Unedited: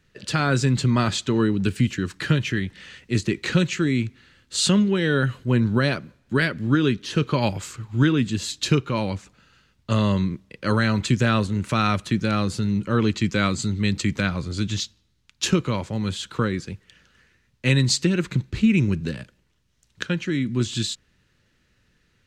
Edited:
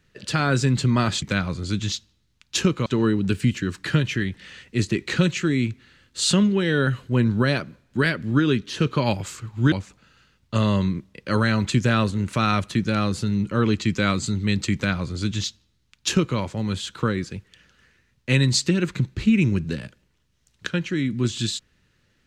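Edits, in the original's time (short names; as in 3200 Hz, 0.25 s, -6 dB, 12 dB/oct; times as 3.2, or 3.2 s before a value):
8.08–9.08 cut
14.1–15.74 copy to 1.22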